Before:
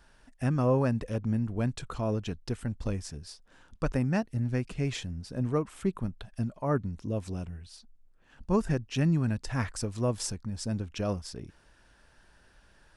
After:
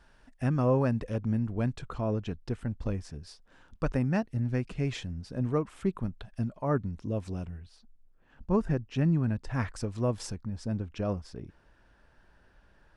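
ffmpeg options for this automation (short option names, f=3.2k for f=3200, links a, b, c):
-af "asetnsamples=n=441:p=0,asendcmd='1.73 lowpass f 2300;3.23 lowpass f 4100;7.6 lowpass f 1600;9.54 lowpass f 3100;10.36 lowpass f 1700',lowpass=f=4.4k:p=1"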